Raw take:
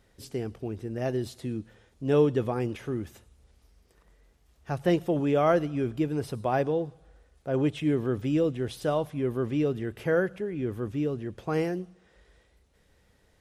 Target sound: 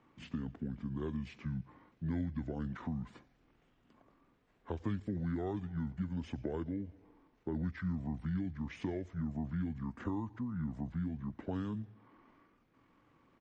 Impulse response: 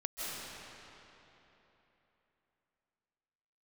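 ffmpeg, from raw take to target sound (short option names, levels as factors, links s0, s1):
-filter_complex "[0:a]acrossover=split=170 4600:gain=0.126 1 0.158[s0][s1][s2];[s0][s1][s2]amix=inputs=3:normalize=0,acrossover=split=150|4800[s3][s4][s5];[s4]acompressor=threshold=0.0141:ratio=8[s6];[s3][s6][s5]amix=inputs=3:normalize=0,asetrate=26222,aresample=44100,atempo=1.68179,volume=1.12"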